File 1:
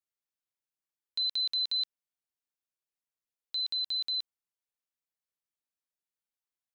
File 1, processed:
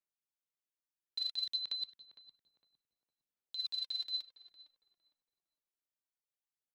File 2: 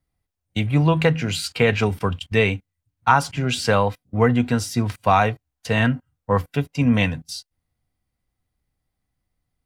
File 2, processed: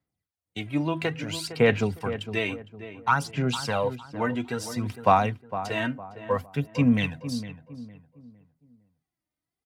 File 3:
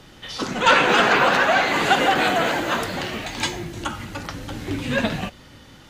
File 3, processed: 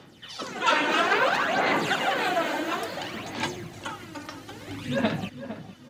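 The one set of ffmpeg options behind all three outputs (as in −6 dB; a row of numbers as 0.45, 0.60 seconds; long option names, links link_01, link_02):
-filter_complex "[0:a]highpass=130,aphaser=in_gain=1:out_gain=1:delay=3.3:decay=0.59:speed=0.59:type=sinusoidal,asplit=2[link_01][link_02];[link_02]adelay=458,lowpass=frequency=1300:poles=1,volume=-11dB,asplit=2[link_03][link_04];[link_04]adelay=458,lowpass=frequency=1300:poles=1,volume=0.36,asplit=2[link_05][link_06];[link_06]adelay=458,lowpass=frequency=1300:poles=1,volume=0.36,asplit=2[link_07][link_08];[link_08]adelay=458,lowpass=frequency=1300:poles=1,volume=0.36[link_09];[link_03][link_05][link_07][link_09]amix=inputs=4:normalize=0[link_10];[link_01][link_10]amix=inputs=2:normalize=0,volume=-8.5dB"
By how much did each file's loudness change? −7.0, −6.0, −6.0 LU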